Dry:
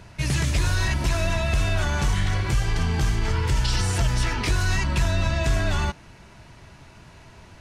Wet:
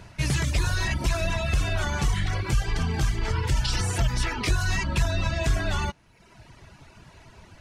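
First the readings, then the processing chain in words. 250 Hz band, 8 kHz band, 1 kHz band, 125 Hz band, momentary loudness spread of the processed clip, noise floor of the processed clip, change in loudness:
-2.5 dB, -2.0 dB, -2.0 dB, -3.0 dB, 2 LU, -55 dBFS, -2.5 dB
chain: reverb removal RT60 0.92 s

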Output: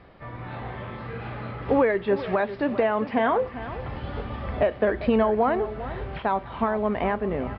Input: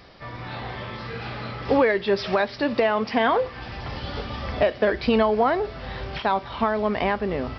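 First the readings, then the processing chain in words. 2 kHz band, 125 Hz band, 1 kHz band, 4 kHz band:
-4.0 dB, 0.0 dB, -2.0 dB, -10.5 dB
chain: air absorption 490 m; echo 0.398 s -14 dB

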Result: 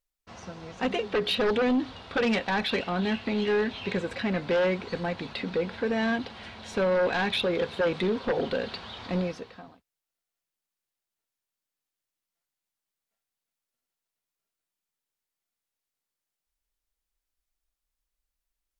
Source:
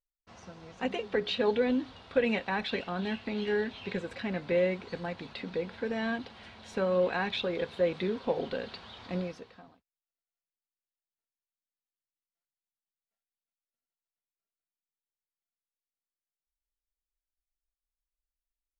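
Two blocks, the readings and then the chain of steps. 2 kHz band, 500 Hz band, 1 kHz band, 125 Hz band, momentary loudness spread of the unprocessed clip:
+5.0 dB, +3.0 dB, +5.5 dB, +5.0 dB, 12 LU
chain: sine folder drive 10 dB, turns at -13.5 dBFS; gain -7 dB

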